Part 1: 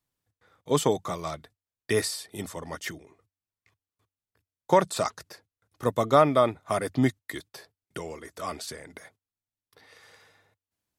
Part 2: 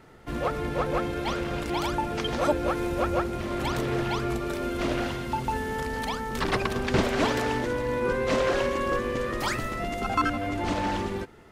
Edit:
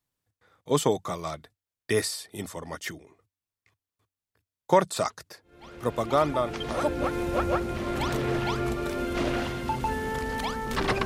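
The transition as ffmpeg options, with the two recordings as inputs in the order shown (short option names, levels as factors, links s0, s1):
-filter_complex "[0:a]apad=whole_dur=11.05,atrim=end=11.05,atrim=end=7.38,asetpts=PTS-STARTPTS[s0];[1:a]atrim=start=1.06:end=6.69,asetpts=PTS-STARTPTS[s1];[s0][s1]acrossfade=d=1.96:c1=tri:c2=tri"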